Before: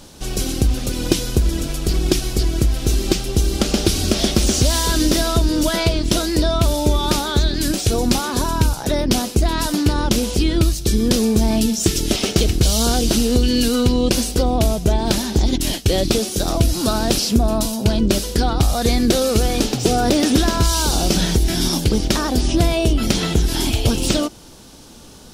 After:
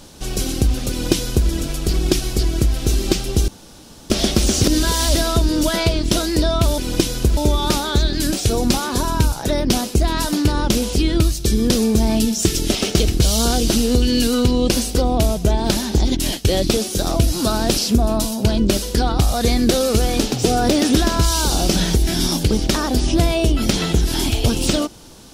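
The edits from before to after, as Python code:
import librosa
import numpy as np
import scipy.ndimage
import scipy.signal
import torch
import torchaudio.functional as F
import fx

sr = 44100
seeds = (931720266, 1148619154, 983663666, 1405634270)

y = fx.edit(x, sr, fx.duplicate(start_s=0.9, length_s=0.59, to_s=6.78),
    fx.room_tone_fill(start_s=3.48, length_s=0.62),
    fx.reverse_span(start_s=4.64, length_s=0.51), tone=tone)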